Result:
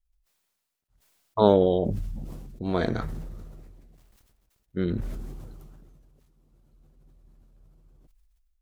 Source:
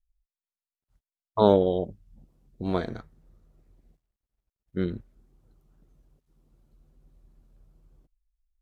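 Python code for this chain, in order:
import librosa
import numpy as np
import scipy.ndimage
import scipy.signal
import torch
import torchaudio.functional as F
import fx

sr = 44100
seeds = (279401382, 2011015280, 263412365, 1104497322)

y = fx.sustainer(x, sr, db_per_s=26.0)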